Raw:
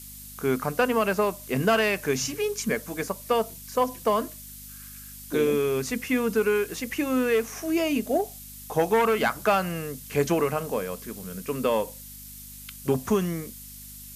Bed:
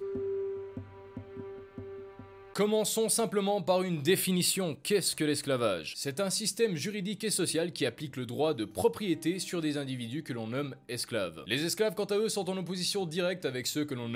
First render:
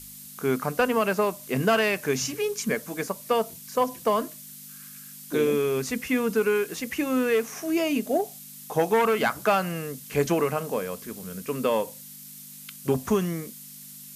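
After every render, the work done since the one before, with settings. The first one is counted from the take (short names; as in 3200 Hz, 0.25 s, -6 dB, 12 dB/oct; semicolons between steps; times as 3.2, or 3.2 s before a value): de-hum 50 Hz, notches 2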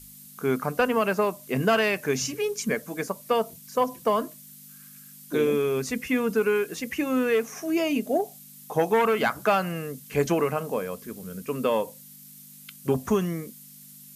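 denoiser 6 dB, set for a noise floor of -44 dBFS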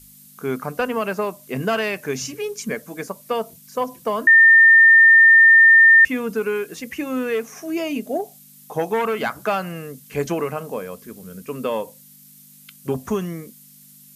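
4.27–6.05 bleep 1810 Hz -7 dBFS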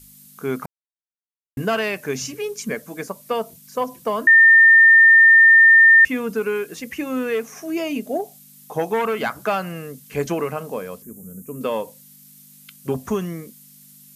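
0.66–1.57 mute; 11.02–11.61 EQ curve 230 Hz 0 dB, 4700 Hz -22 dB, 6800 Hz 0 dB, 12000 Hz +3 dB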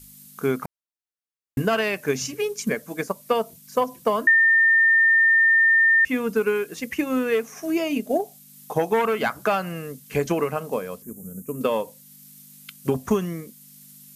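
limiter -13.5 dBFS, peak gain reduction 6.5 dB; transient shaper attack +4 dB, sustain -2 dB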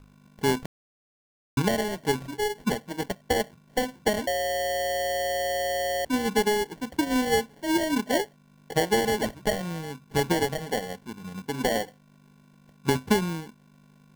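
median filter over 41 samples; sample-and-hold 35×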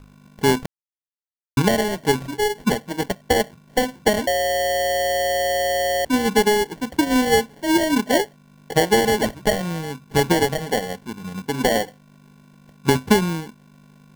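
gain +6.5 dB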